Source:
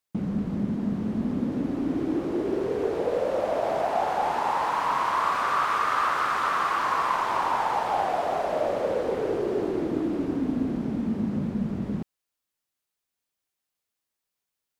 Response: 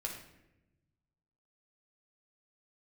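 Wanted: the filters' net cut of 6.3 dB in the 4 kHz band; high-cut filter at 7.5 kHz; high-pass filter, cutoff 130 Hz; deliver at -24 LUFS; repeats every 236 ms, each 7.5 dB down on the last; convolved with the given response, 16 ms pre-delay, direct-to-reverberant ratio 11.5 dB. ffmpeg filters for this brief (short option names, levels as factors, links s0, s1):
-filter_complex "[0:a]highpass=130,lowpass=7500,equalizer=f=4000:t=o:g=-8.5,aecho=1:1:236|472|708|944|1180:0.422|0.177|0.0744|0.0312|0.0131,asplit=2[s0][s1];[1:a]atrim=start_sample=2205,adelay=16[s2];[s1][s2]afir=irnorm=-1:irlink=0,volume=0.251[s3];[s0][s3]amix=inputs=2:normalize=0,volume=1.26"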